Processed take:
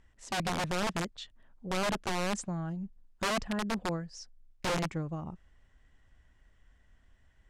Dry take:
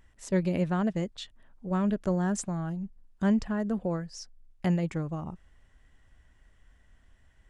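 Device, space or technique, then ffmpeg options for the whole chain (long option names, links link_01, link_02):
overflowing digital effects unit: -af "aeval=exprs='(mod(13.3*val(0)+1,2)-1)/13.3':channel_layout=same,lowpass=8300,volume=-3dB"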